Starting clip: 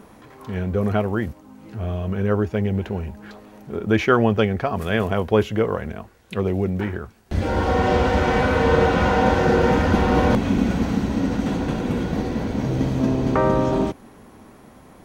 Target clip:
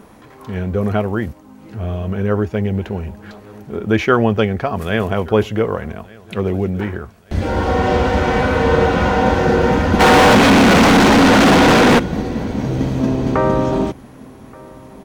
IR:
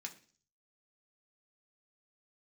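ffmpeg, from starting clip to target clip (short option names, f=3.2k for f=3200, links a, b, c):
-filter_complex "[0:a]aecho=1:1:1177|2354|3531:0.0668|0.0281|0.0118,asplit=3[a][b][c];[a]afade=t=out:st=9.99:d=0.02[d];[b]asplit=2[e][f];[f]highpass=f=720:p=1,volume=40dB,asoftclip=type=tanh:threshold=-6dB[g];[e][g]amix=inputs=2:normalize=0,lowpass=f=3.3k:p=1,volume=-6dB,afade=t=in:st=9.99:d=0.02,afade=t=out:st=11.98:d=0.02[h];[c]afade=t=in:st=11.98:d=0.02[i];[d][h][i]amix=inputs=3:normalize=0,volume=3dB"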